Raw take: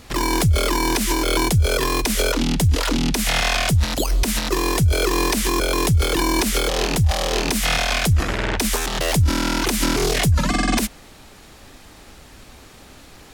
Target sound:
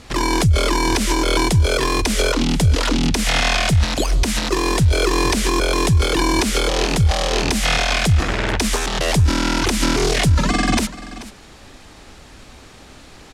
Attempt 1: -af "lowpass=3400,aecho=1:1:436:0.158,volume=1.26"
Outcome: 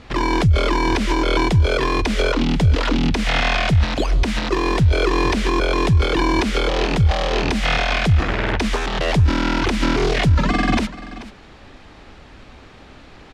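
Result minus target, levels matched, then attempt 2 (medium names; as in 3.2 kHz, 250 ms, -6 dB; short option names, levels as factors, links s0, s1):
8 kHz band -11.5 dB
-af "lowpass=8800,aecho=1:1:436:0.158,volume=1.26"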